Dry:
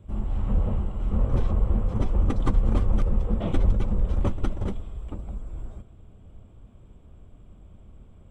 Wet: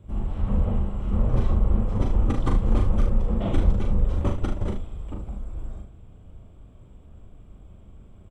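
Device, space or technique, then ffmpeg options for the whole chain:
slapback doubling: -filter_complex "[0:a]asplit=3[a][b][c];[b]adelay=40,volume=-4dB[d];[c]adelay=75,volume=-10dB[e];[a][d][e]amix=inputs=3:normalize=0"

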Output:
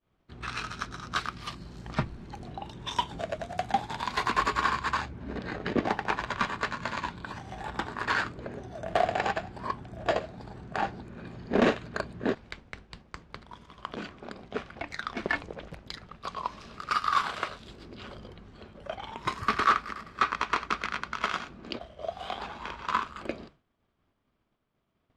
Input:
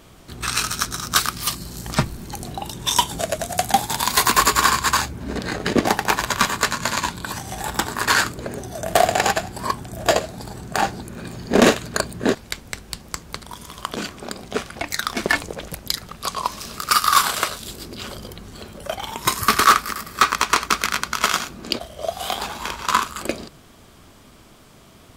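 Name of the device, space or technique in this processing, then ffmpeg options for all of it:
hearing-loss simulation: -af "lowpass=2.9k,agate=range=-33dB:threshold=-36dB:ratio=3:detection=peak,volume=-9dB"

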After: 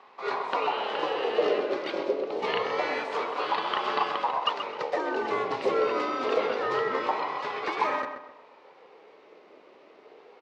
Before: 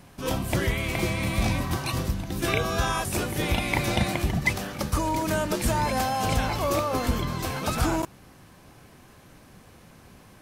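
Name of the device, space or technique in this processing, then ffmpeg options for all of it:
voice changer toy: -filter_complex "[0:a]aeval=exprs='val(0)*sin(2*PI*700*n/s+700*0.35/0.26*sin(2*PI*0.26*n/s))':c=same,highpass=410,equalizer=f=440:t=q:w=4:g=8,equalizer=f=690:t=q:w=4:g=-7,equalizer=f=1.6k:t=q:w=4:g=-7,equalizer=f=3.3k:t=q:w=4:g=-5,lowpass=f=3.9k:w=0.5412,lowpass=f=3.9k:w=1.3066,asplit=2[a][b];[b]adelay=129,lowpass=f=2.5k:p=1,volume=-7dB,asplit=2[c][d];[d]adelay=129,lowpass=f=2.5k:p=1,volume=0.36,asplit=2[e][f];[f]adelay=129,lowpass=f=2.5k:p=1,volume=0.36,asplit=2[g][h];[h]adelay=129,lowpass=f=2.5k:p=1,volume=0.36[i];[a][c][e][g][i]amix=inputs=5:normalize=0,volume=2dB"

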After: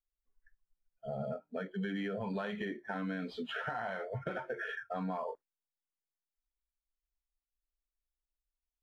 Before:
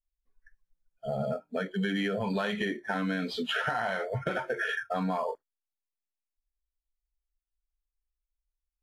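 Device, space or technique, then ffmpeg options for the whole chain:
through cloth: -af "highshelf=f=3.8k:g=-13,volume=-6.5dB"

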